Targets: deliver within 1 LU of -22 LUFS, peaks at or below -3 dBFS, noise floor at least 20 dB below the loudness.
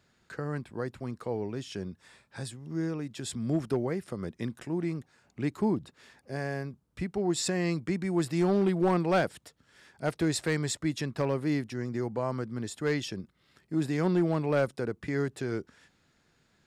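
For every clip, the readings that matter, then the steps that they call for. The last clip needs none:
clipped samples 0.3%; clipping level -19.0 dBFS; loudness -31.5 LUFS; peak level -19.0 dBFS; loudness target -22.0 LUFS
-> clip repair -19 dBFS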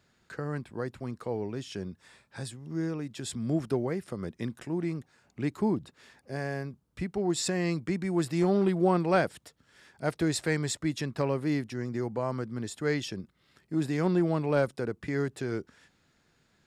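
clipped samples 0.0%; loudness -31.0 LUFS; peak level -11.0 dBFS; loudness target -22.0 LUFS
-> trim +9 dB; peak limiter -3 dBFS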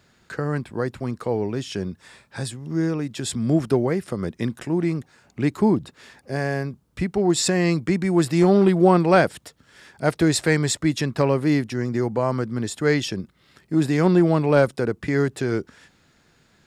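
loudness -22.0 LUFS; peak level -3.0 dBFS; noise floor -61 dBFS

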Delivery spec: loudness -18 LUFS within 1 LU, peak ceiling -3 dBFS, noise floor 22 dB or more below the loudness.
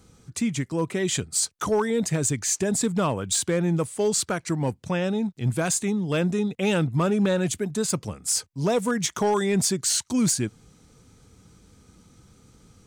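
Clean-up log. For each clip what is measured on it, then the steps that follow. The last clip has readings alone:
clipped samples 0.4%; clipping level -16.0 dBFS; loudness -24.5 LUFS; peak level -16.0 dBFS; loudness target -18.0 LUFS
-> clip repair -16 dBFS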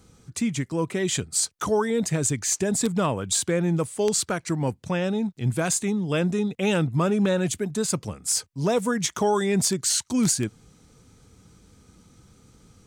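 clipped samples 0.0%; loudness -24.5 LUFS; peak level -7.0 dBFS; loudness target -18.0 LUFS
-> trim +6.5 dB; peak limiter -3 dBFS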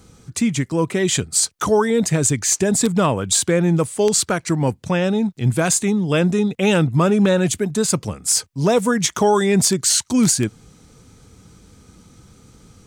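loudness -18.0 LUFS; peak level -3.0 dBFS; noise floor -51 dBFS

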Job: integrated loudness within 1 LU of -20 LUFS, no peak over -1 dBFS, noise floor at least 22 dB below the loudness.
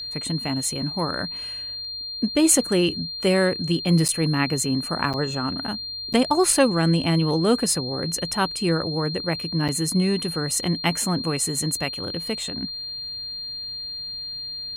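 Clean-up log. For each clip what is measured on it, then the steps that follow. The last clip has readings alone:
dropouts 4; longest dropout 7.6 ms; steady tone 4.2 kHz; tone level -30 dBFS; loudness -23.0 LUFS; peak level -4.5 dBFS; loudness target -20.0 LUFS
-> interpolate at 4.08/5.13/6.13/9.68 s, 7.6 ms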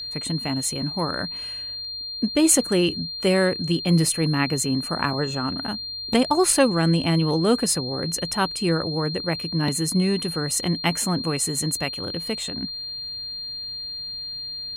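dropouts 0; steady tone 4.2 kHz; tone level -30 dBFS
-> band-stop 4.2 kHz, Q 30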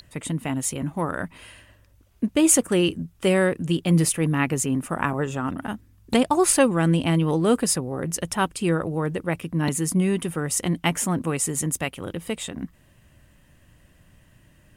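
steady tone not found; loudness -23.5 LUFS; peak level -5.0 dBFS; loudness target -20.0 LUFS
-> trim +3.5 dB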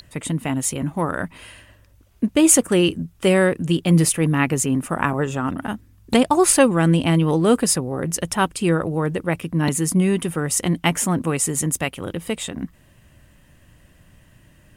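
loudness -20.0 LUFS; peak level -1.5 dBFS; noise floor -53 dBFS

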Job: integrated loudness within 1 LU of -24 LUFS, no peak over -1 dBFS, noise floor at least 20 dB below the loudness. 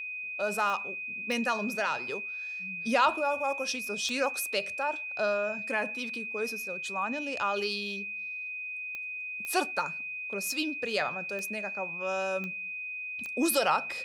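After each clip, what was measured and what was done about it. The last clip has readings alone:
clicks found 8; steady tone 2.5 kHz; tone level -35 dBFS; loudness -31.0 LUFS; peak level -13.0 dBFS; loudness target -24.0 LUFS
-> de-click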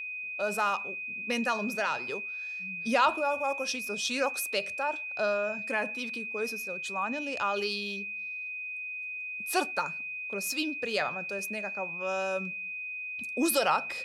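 clicks found 0; steady tone 2.5 kHz; tone level -35 dBFS
-> band-stop 2.5 kHz, Q 30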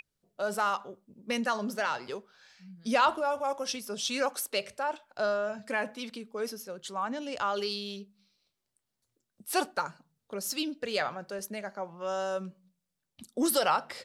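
steady tone not found; loudness -32.0 LUFS; peak level -13.0 dBFS; loudness target -24.0 LUFS
-> trim +8 dB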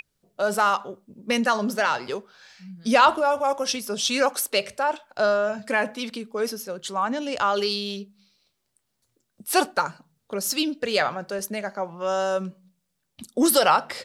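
loudness -24.0 LUFS; peak level -5.0 dBFS; noise floor -76 dBFS

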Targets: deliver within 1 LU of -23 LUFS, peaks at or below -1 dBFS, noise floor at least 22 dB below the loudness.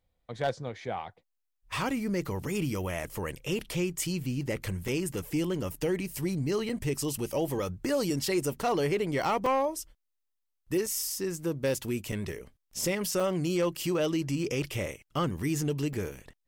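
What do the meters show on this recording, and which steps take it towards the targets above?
clipped samples 0.3%; clipping level -21.0 dBFS; dropouts 7; longest dropout 3.7 ms; loudness -31.0 LUFS; peak level -21.0 dBFS; loudness target -23.0 LUFS
-> clip repair -21 dBFS; interpolate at 4.88/6.69/9.46/10.86/12.12/13.20/15.93 s, 3.7 ms; trim +8 dB

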